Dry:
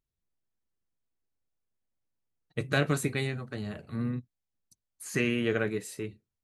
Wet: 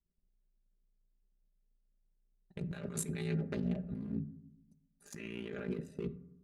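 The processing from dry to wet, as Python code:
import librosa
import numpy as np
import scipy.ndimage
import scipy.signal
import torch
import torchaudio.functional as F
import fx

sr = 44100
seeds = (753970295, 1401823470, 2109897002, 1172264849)

y = fx.wiener(x, sr, points=41)
y = y * np.sin(2.0 * np.pi * 29.0 * np.arange(len(y)) / sr)
y = fx.vibrato(y, sr, rate_hz=0.92, depth_cents=28.0)
y = fx.hum_notches(y, sr, base_hz=50, count=3)
y = y + 0.72 * np.pad(y, (int(5.0 * sr / 1000.0), 0))[:len(y)]
y = fx.transient(y, sr, attack_db=6, sustain_db=0)
y = fx.over_compress(y, sr, threshold_db=-38.0, ratio=-1.0)
y = fx.rev_fdn(y, sr, rt60_s=0.84, lf_ratio=1.45, hf_ratio=0.4, size_ms=34.0, drr_db=12.5)
y = y * 10.0 ** (-2.5 / 20.0)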